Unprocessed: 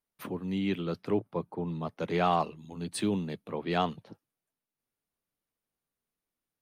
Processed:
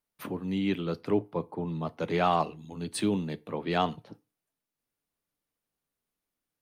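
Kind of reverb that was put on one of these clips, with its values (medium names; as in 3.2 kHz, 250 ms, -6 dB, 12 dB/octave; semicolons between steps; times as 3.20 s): FDN reverb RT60 0.32 s, low-frequency decay 0.9×, high-frequency decay 0.8×, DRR 15.5 dB; trim +1.5 dB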